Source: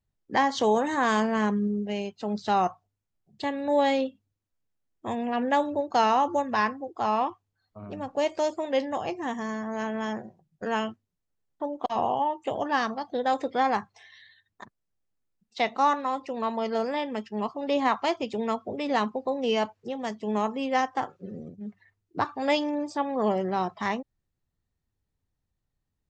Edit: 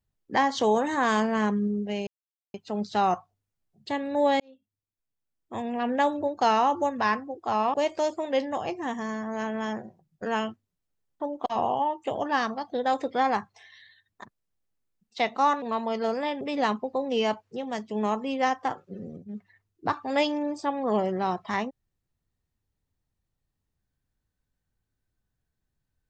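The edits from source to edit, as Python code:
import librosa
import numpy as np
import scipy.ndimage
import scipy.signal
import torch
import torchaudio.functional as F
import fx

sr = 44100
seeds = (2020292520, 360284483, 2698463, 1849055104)

y = fx.edit(x, sr, fx.insert_silence(at_s=2.07, length_s=0.47),
    fx.fade_in_span(start_s=3.93, length_s=1.52),
    fx.cut(start_s=7.27, length_s=0.87),
    fx.cut(start_s=16.02, length_s=0.31),
    fx.cut(start_s=17.12, length_s=1.61), tone=tone)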